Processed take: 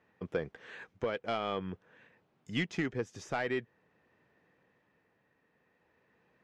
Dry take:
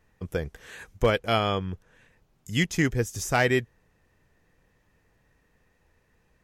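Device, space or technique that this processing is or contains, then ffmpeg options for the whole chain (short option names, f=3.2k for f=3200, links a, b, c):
AM radio: -af "highpass=190,lowpass=3.8k,acompressor=threshold=-24dB:ratio=6,asoftclip=type=tanh:threshold=-19.5dB,tremolo=f=0.47:d=0.34,highshelf=f=4.5k:g=-6"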